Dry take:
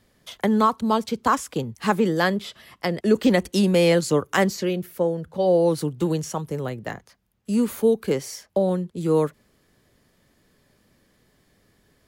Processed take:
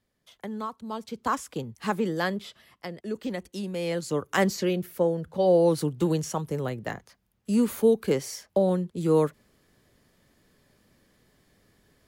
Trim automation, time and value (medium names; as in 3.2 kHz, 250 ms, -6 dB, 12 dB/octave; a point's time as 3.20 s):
0.85 s -15 dB
1.31 s -6.5 dB
2.46 s -6.5 dB
3.01 s -14 dB
3.74 s -14 dB
4.51 s -1.5 dB